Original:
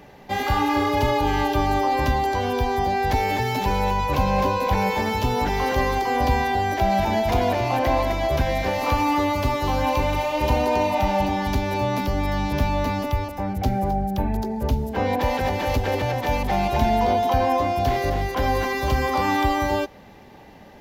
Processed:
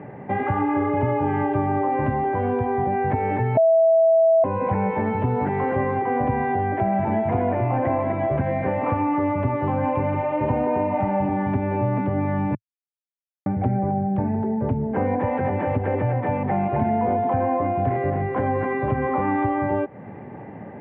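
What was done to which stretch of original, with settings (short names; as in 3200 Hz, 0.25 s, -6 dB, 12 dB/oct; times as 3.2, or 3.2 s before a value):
3.57–4.44 bleep 655 Hz -7.5 dBFS
12.55–13.46 mute
whole clip: elliptic band-pass 110–2100 Hz, stop band 40 dB; tilt -2.5 dB/oct; compressor 2:1, threshold -32 dBFS; gain +6 dB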